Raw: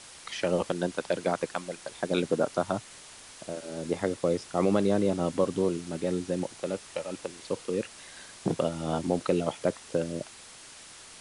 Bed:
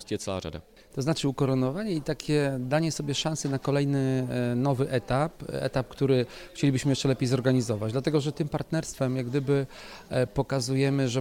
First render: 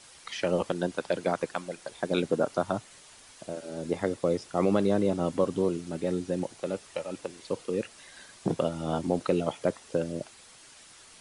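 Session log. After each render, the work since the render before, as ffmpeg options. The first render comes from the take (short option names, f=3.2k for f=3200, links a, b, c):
-af "afftdn=nr=6:nf=-49"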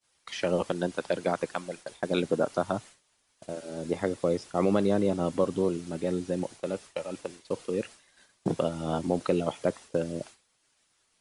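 -af "agate=range=-33dB:threshold=-40dB:ratio=3:detection=peak"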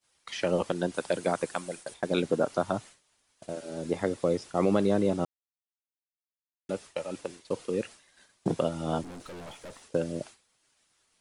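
-filter_complex "[0:a]asettb=1/sr,asplit=3[a][b][c];[a]atrim=end=0.944[d];[b]atrim=start=0.94:end=1.94,asetpts=PTS-STARTPTS,afade=t=in:d=0.004:c=qsin,afade=t=out:st=0.996:d=0.004:c=qsin,equalizer=f=9.1k:t=o:w=0.77:g=7.5[e];[c]atrim=start=1.936[f];[d][e]acrossfade=d=0.004:c1=hsin:c2=qsin[g];[g][f]acrossfade=d=0.004:c1=qsin:c2=hsin,asettb=1/sr,asplit=3[h][i][j];[h]atrim=end=9.034[k];[i]atrim=start=9.03:end=9.83,asetpts=PTS-STARTPTS,afade=t=in:d=0.004:c=qsin,afade=t=out:st=0.796:d=0.004:c=qsin,aeval=exprs='(tanh(112*val(0)+0.4)-tanh(0.4))/112':c=same[l];[j]atrim=start=9.826[m];[k][l]acrossfade=d=0.004:c1=hsin:c2=qsin[n];[n][m]acrossfade=d=0.004:c1=qsin:c2=hsin,asplit=3[o][p][q];[o]atrim=end=5.25,asetpts=PTS-STARTPTS,afade=t=out:st=5.246:d=0.004:c=hsin[r];[p]atrim=start=5.25:end=6.69,asetpts=PTS-STARTPTS,volume=0[s];[q]atrim=start=6.69,asetpts=PTS-STARTPTS,afade=t=in:d=0.004:c=hsin[t];[r][s][t]concat=n=3:v=0:a=1"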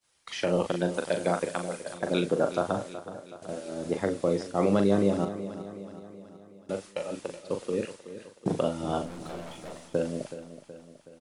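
-filter_complex "[0:a]asplit=2[a][b];[b]adelay=40,volume=-7dB[c];[a][c]amix=inputs=2:normalize=0,aecho=1:1:373|746|1119|1492|1865|2238:0.224|0.121|0.0653|0.0353|0.019|0.0103"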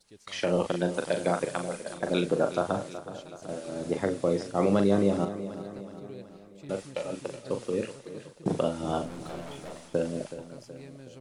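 -filter_complex "[1:a]volume=-22.5dB[a];[0:a][a]amix=inputs=2:normalize=0"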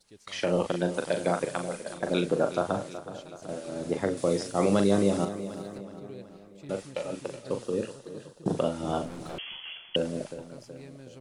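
-filter_complex "[0:a]asettb=1/sr,asplit=3[a][b][c];[a]atrim=end=4.174[d];[b]atrim=start=4.17:end=5.78,asetpts=PTS-STARTPTS,afade=t=in:d=0.004:c=qsin,afade=t=out:st=1.606:d=0.004:c=qsin,highshelf=f=4.2k:g=10.5[e];[c]atrim=start=5.776[f];[d][e]acrossfade=d=0.004:c1=hsin:c2=qsin[g];[g][f]acrossfade=d=0.004:c1=qsin:c2=hsin,asettb=1/sr,asplit=3[h][i][j];[h]atrim=end=7.624[k];[i]atrim=start=7.62:end=8.57,asetpts=PTS-STARTPTS,afade=t=in:d=0.004:c=qsin,afade=t=out:st=0.946:d=0.004:c=qsin,equalizer=f=2.2k:t=o:w=0.29:g=-13[l];[j]atrim=start=8.566[m];[k][l]acrossfade=d=0.004:c1=hsin:c2=qsin[n];[n][m]acrossfade=d=0.004:c1=qsin:c2=hsin,asettb=1/sr,asplit=3[o][p][q];[o]atrim=end=9.384[r];[p]atrim=start=9.38:end=9.96,asetpts=PTS-STARTPTS,afade=t=in:d=0.004:c=qsin,afade=t=out:st=0.576:d=0.004:c=qsin,lowpass=f=2.9k:t=q:w=0.5098,lowpass=f=2.9k:t=q:w=0.6013,lowpass=f=2.9k:t=q:w=0.9,lowpass=f=2.9k:t=q:w=2.563,afreqshift=-3400[s];[q]atrim=start=9.956[t];[r][s]acrossfade=d=0.004:c1=hsin:c2=qsin[u];[u][t]acrossfade=d=0.004:c1=qsin:c2=hsin"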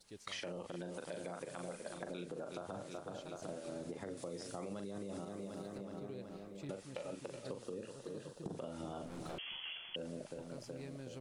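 -af "alimiter=limit=-21.5dB:level=0:latency=1:release=79,acompressor=threshold=-42dB:ratio=6"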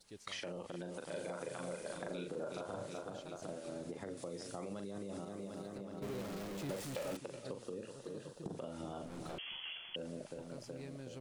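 -filter_complex "[0:a]asettb=1/sr,asplit=3[a][b][c];[a]atrim=end=1.074[d];[b]atrim=start=1.07:end=3.1,asetpts=PTS-STARTPTS,afade=t=in:d=0.004:c=qsin,afade=t=out:st=2.026:d=0.004:c=qsin,asplit=2[e][f];[f]adelay=38,volume=-2dB[g];[e][g]amix=inputs=2:normalize=0,atrim=end_sample=89523[h];[c]atrim=start=3.096[i];[d][h]acrossfade=d=0.004:c1=hsin:c2=qsin[j];[j][i]acrossfade=d=0.004:c1=qsin:c2=hsin,asettb=1/sr,asplit=3[k][l][m];[k]atrim=end=6.024[n];[l]atrim=start=6.02:end=7.17,asetpts=PTS-STARTPTS,afade=t=in:d=0.004:c=qsin,afade=t=out:st=1.146:d=0.004:c=qsin,aeval=exprs='val(0)+0.5*0.00841*sgn(val(0))':c=same[o];[m]atrim=start=7.166[p];[n][o]acrossfade=d=0.004:c1=hsin:c2=qsin[q];[q][p]acrossfade=d=0.004:c1=qsin:c2=hsin"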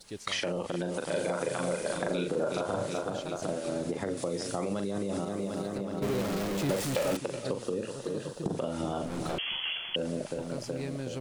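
-af "volume=12dB"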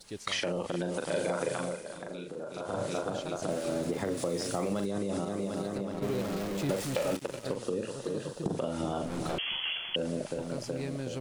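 -filter_complex "[0:a]asettb=1/sr,asplit=3[a][b][c];[a]atrim=end=3.504[d];[b]atrim=start=3.5:end=4.86,asetpts=PTS-STARTPTS,afade=t=in:d=0.004:c=qsin,afade=t=out:st=1.356:d=0.004:c=qsin,aeval=exprs='val(0)+0.5*0.00668*sgn(val(0))':c=same[e];[c]atrim=start=4.856[f];[d][e]acrossfade=d=0.004:c1=hsin:c2=qsin[g];[g][f]acrossfade=d=0.004:c1=qsin:c2=hsin,asettb=1/sr,asplit=3[h][i][j];[h]atrim=end=5.924[k];[i]atrim=start=5.92:end=7.56,asetpts=PTS-STARTPTS,afade=t=in:d=0.004:c=qsin,afade=t=out:st=1.636:d=0.004:c=qsin,aeval=exprs='sgn(val(0))*max(abs(val(0))-0.00668,0)':c=same[l];[j]atrim=start=7.556[m];[k][l]acrossfade=d=0.004:c1=hsin:c2=qsin[n];[n][m]acrossfade=d=0.004:c1=qsin:c2=hsin,asplit=3[o][p][q];[o]atrim=end=1.84,asetpts=PTS-STARTPTS,afade=t=out:st=1.51:d=0.33:silence=0.316228[r];[p]atrim=start=1.84:end=2.53,asetpts=PTS-STARTPTS,volume=-10dB[s];[q]atrim=start=2.53,asetpts=PTS-STARTPTS,afade=t=in:d=0.33:silence=0.316228[t];[r][s][t]concat=n=3:v=0:a=1"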